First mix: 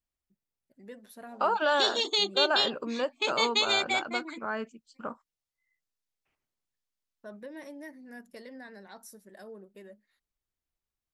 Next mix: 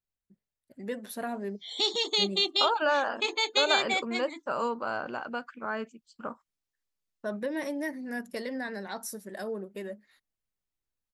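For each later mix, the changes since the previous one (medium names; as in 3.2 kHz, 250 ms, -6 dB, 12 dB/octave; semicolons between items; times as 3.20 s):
first voice +11.0 dB; second voice: entry +1.20 s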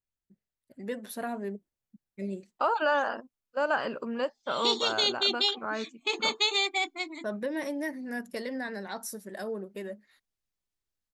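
background: entry +2.85 s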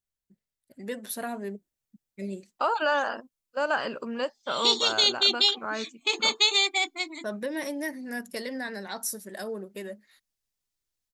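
master: add treble shelf 3.1 kHz +8.5 dB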